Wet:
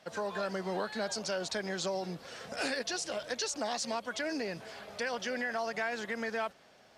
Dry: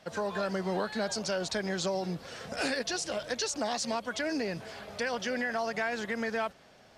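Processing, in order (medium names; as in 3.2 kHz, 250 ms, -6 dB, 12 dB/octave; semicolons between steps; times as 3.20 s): bass shelf 160 Hz -8.5 dB; trim -2 dB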